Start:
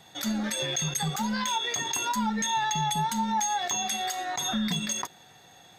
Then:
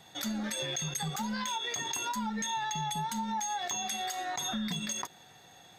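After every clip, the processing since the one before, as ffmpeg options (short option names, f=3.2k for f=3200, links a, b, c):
-af "acompressor=threshold=-30dB:ratio=3,volume=-2dB"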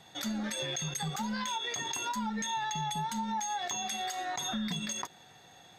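-af "highshelf=f=11k:g=-7.5"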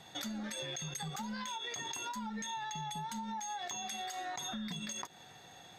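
-af "acompressor=threshold=-39dB:ratio=6,volume=1dB"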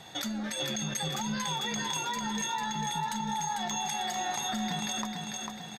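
-af "aecho=1:1:447|894|1341|1788|2235|2682:0.631|0.309|0.151|0.0742|0.0364|0.0178,volume=6dB"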